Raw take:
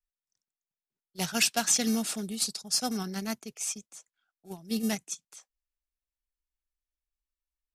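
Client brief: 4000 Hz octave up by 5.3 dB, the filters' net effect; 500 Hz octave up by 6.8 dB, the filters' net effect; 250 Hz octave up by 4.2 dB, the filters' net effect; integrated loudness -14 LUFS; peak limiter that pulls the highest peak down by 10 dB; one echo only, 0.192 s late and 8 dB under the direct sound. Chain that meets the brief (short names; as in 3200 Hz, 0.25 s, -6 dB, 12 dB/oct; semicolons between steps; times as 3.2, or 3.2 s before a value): bell 250 Hz +3.5 dB; bell 500 Hz +7.5 dB; bell 4000 Hz +7 dB; limiter -17 dBFS; echo 0.192 s -8 dB; gain +14.5 dB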